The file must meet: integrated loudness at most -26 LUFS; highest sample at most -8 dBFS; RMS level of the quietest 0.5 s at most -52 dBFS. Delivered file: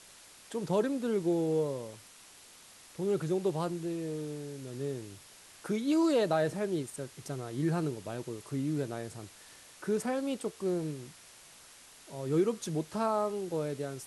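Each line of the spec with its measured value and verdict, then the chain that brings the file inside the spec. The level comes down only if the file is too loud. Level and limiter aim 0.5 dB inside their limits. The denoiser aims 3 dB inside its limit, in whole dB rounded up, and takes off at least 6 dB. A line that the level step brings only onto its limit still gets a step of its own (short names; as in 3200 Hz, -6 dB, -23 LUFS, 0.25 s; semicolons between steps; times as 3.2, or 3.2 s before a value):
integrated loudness -33.0 LUFS: OK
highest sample -17.0 dBFS: OK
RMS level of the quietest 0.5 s -55 dBFS: OK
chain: none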